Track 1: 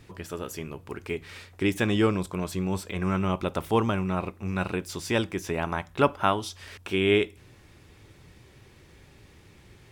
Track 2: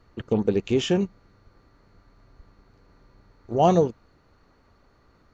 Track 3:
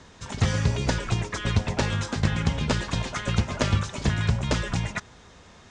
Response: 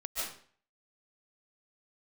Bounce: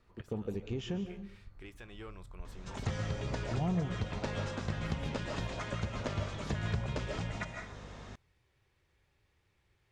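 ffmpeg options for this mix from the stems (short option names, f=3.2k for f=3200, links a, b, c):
-filter_complex "[0:a]asoftclip=type=tanh:threshold=-14.5dB,equalizer=f=230:w=0.75:g=-10,alimiter=limit=-20.5dB:level=0:latency=1:release=237,volume=-17dB,asplit=2[a][b];[1:a]asubboost=boost=11.5:cutoff=150,volume=-12dB,asplit=2[c][d];[d]volume=-11.5dB[e];[2:a]equalizer=f=520:w=1.5:g=3,aeval=exprs='val(0)+0.00447*(sin(2*PI*50*n/s)+sin(2*PI*2*50*n/s)/2+sin(2*PI*3*50*n/s)/3+sin(2*PI*4*50*n/s)/4+sin(2*PI*5*50*n/s)/5)':c=same,adelay=2450,volume=-1dB,asplit=2[f][g];[g]volume=-12.5dB[h];[b]apad=whole_len=359658[i];[f][i]sidechaincompress=threshold=-59dB:ratio=3:attack=16:release=503[j];[3:a]atrim=start_sample=2205[k];[e][h]amix=inputs=2:normalize=0[l];[l][k]afir=irnorm=-1:irlink=0[m];[a][c][j][m]amix=inputs=4:normalize=0,highshelf=f=5.2k:g=-8,acompressor=threshold=-36dB:ratio=2"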